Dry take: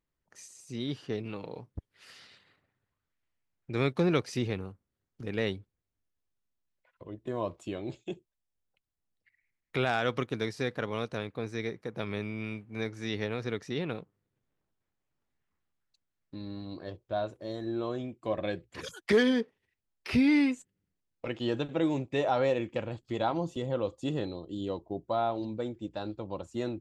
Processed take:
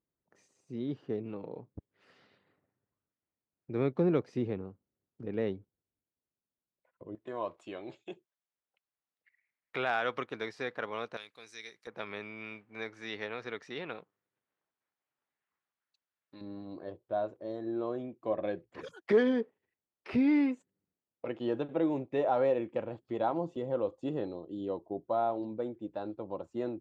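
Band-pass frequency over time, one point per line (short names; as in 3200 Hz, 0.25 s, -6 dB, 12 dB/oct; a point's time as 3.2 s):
band-pass, Q 0.59
340 Hz
from 7.15 s 1200 Hz
from 11.17 s 6500 Hz
from 11.87 s 1400 Hz
from 16.41 s 530 Hz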